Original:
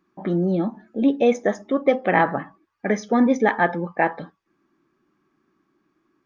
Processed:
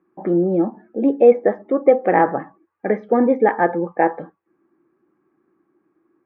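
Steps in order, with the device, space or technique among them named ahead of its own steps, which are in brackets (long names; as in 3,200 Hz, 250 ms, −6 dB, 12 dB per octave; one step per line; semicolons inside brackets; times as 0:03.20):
bass cabinet (loudspeaker in its box 60–2,200 Hz, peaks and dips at 340 Hz +8 dB, 490 Hz +9 dB, 790 Hz +6 dB)
level −2 dB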